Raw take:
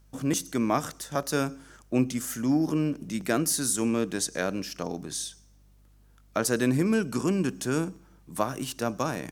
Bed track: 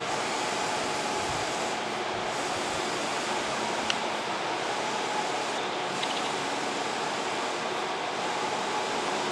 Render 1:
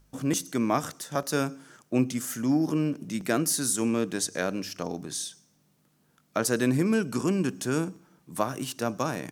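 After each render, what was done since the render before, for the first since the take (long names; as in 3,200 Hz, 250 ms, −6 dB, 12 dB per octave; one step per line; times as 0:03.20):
hum removal 50 Hz, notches 2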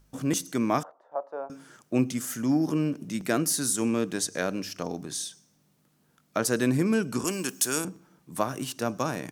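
0:00.83–0:01.50: flat-topped band-pass 720 Hz, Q 1.6
0:07.24–0:07.85: RIAA equalisation recording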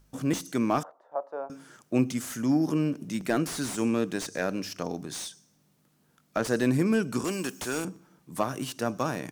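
slew-rate limiting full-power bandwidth 120 Hz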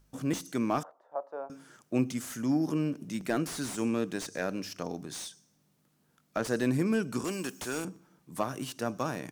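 level −3.5 dB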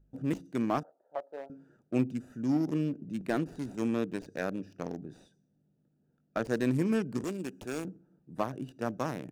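adaptive Wiener filter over 41 samples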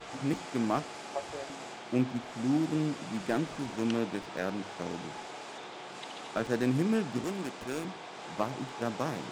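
mix in bed track −13.5 dB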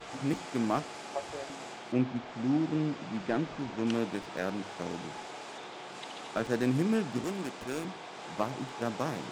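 0:01.92–0:03.87: high-frequency loss of the air 100 metres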